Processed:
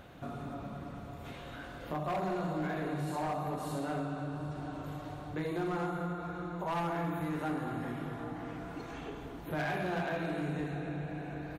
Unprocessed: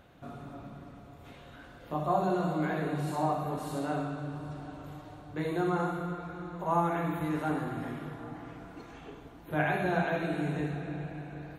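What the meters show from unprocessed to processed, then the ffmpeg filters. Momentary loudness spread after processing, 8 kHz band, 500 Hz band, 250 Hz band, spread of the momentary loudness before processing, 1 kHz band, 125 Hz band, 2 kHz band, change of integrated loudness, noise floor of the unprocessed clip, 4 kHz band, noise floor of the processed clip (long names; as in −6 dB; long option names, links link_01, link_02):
10 LU, −1.5 dB, −3.5 dB, −3.0 dB, 19 LU, −4.5 dB, −3.0 dB, −3.5 dB, −4.5 dB, −51 dBFS, −0.5 dB, −46 dBFS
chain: -filter_complex "[0:a]asoftclip=type=hard:threshold=-26.5dB,asplit=2[link_01][link_02];[link_02]adelay=215.7,volume=-11dB,highshelf=frequency=4000:gain=-4.85[link_03];[link_01][link_03]amix=inputs=2:normalize=0,acompressor=threshold=-45dB:ratio=2,volume=5.5dB"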